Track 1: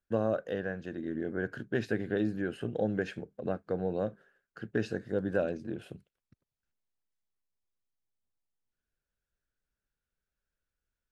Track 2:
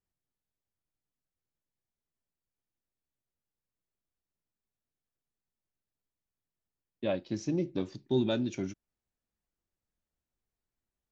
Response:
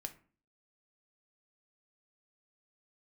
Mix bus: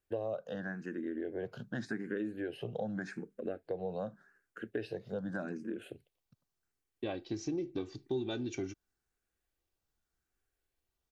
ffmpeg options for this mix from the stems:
-filter_complex "[0:a]highpass=130,asplit=2[link_01][link_02];[link_02]afreqshift=0.85[link_03];[link_01][link_03]amix=inputs=2:normalize=1,volume=2dB[link_04];[1:a]aecho=1:1:2.6:0.59,volume=0.5dB[link_05];[link_04][link_05]amix=inputs=2:normalize=0,acompressor=threshold=-35dB:ratio=3"

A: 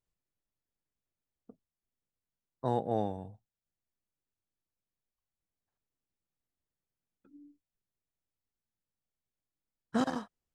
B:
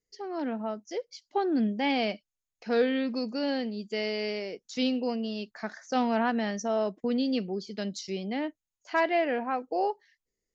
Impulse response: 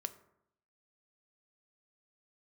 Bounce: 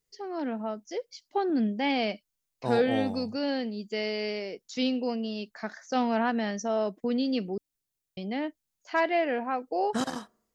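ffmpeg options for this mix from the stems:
-filter_complex "[0:a]highshelf=frequency=3000:gain=11,volume=-2dB,asplit=2[link_01][link_02];[link_02]volume=-12dB[link_03];[1:a]volume=0dB,asplit=3[link_04][link_05][link_06];[link_04]atrim=end=7.58,asetpts=PTS-STARTPTS,afade=type=out:start_time=7.576:duration=0.004:curve=hsin[link_07];[link_05]atrim=start=7.58:end=8.17,asetpts=PTS-STARTPTS,volume=0[link_08];[link_06]atrim=start=8.17,asetpts=PTS-STARTPTS,afade=type=in:duration=0.004:curve=hsin[link_09];[link_07][link_08][link_09]concat=n=3:v=0:a=1[link_10];[2:a]atrim=start_sample=2205[link_11];[link_03][link_11]afir=irnorm=-1:irlink=0[link_12];[link_01][link_10][link_12]amix=inputs=3:normalize=0"

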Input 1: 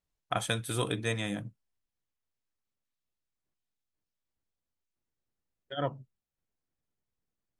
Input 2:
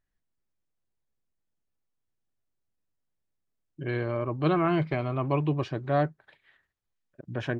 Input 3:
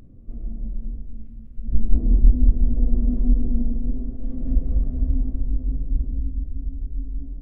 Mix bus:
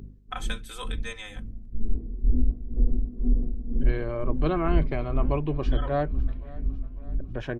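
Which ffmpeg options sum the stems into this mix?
ffmpeg -i stem1.wav -i stem2.wav -i stem3.wav -filter_complex "[0:a]highpass=810,aecho=1:1:3.9:0.83,volume=-4dB[link_01];[1:a]equalizer=frequency=470:width_type=o:width=0.77:gain=4,volume=-3dB,asplit=2[link_02][link_03];[link_03]volume=-22dB[link_04];[2:a]aeval=exprs='val(0)+0.0126*(sin(2*PI*50*n/s)+sin(2*PI*2*50*n/s)/2+sin(2*PI*3*50*n/s)/3+sin(2*PI*4*50*n/s)/4+sin(2*PI*5*50*n/s)/5)':channel_layout=same,aeval=exprs='val(0)*pow(10,-19*(0.5-0.5*cos(2*PI*2.1*n/s))/20)':channel_layout=same,volume=0dB,asplit=2[link_05][link_06];[link_06]volume=-8.5dB[link_07];[link_01][link_05]amix=inputs=2:normalize=0,equalizer=frequency=400:width_type=o:width=0.33:gain=10,equalizer=frequency=630:width_type=o:width=0.33:gain=-6,equalizer=frequency=10000:width_type=o:width=0.33:gain=-12,alimiter=limit=-12.5dB:level=0:latency=1:release=182,volume=0dB[link_08];[link_04][link_07]amix=inputs=2:normalize=0,aecho=0:1:551|1102|1653|2204|2755|3306|3857|4408:1|0.54|0.292|0.157|0.085|0.0459|0.0248|0.0134[link_09];[link_02][link_08][link_09]amix=inputs=3:normalize=0" out.wav

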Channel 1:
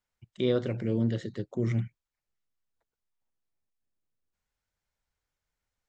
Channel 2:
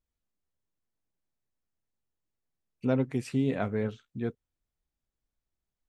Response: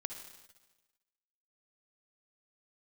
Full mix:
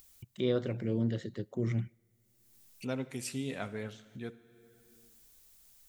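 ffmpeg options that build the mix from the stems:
-filter_complex "[0:a]agate=range=-33dB:threshold=-54dB:ratio=3:detection=peak,volume=-4dB,asplit=2[link_01][link_02];[link_02]volume=-22dB[link_03];[1:a]crystalizer=i=7:c=0,volume=-12.5dB,asplit=2[link_04][link_05];[link_05]volume=-6.5dB[link_06];[2:a]atrim=start_sample=2205[link_07];[link_03][link_06]amix=inputs=2:normalize=0[link_08];[link_08][link_07]afir=irnorm=-1:irlink=0[link_09];[link_01][link_04][link_09]amix=inputs=3:normalize=0,acompressor=mode=upward:threshold=-41dB:ratio=2.5"

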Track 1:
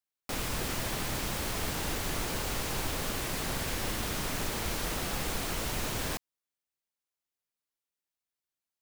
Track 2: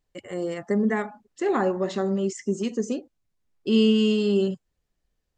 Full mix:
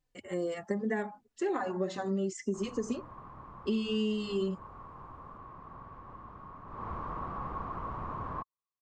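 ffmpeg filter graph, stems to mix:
ffmpeg -i stem1.wav -i stem2.wav -filter_complex "[0:a]lowpass=frequency=1100:width_type=q:width=12,equalizer=frequency=110:width=0.44:gain=7.5,adelay=2250,volume=-11dB,afade=type=in:start_time=6.66:duration=0.22:silence=0.298538[link_01];[1:a]asplit=2[link_02][link_03];[link_03]adelay=3.4,afreqshift=-2.6[link_04];[link_02][link_04]amix=inputs=2:normalize=1,volume=-1dB[link_05];[link_01][link_05]amix=inputs=2:normalize=0,acompressor=threshold=-28dB:ratio=6" out.wav

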